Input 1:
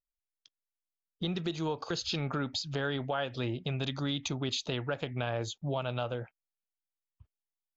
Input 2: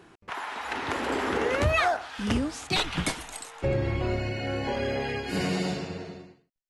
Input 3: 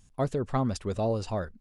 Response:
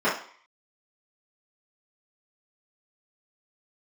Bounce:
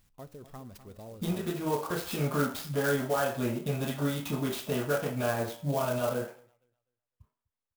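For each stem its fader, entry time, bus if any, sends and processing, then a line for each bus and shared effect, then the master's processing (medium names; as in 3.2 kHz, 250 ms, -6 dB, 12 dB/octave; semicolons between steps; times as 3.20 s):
-4.0 dB, 0.00 s, send -9 dB, echo send -21.5 dB, none
mute
-4.0 dB, 0.00 s, no send, echo send -12.5 dB, flange 1.9 Hz, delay 9.8 ms, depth 2.5 ms, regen -86%; compression 1.5:1, threshold -57 dBFS, peak gain reduction 10.5 dB; treble shelf 3.9 kHz +7.5 dB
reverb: on, RT60 0.50 s, pre-delay 3 ms
echo: feedback delay 251 ms, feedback 23%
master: sampling jitter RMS 0.043 ms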